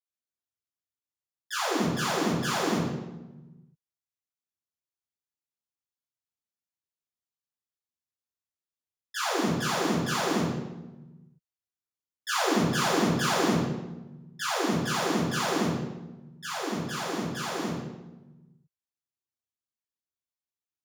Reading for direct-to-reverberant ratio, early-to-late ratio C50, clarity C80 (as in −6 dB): −12.0 dB, 0.5 dB, 3.5 dB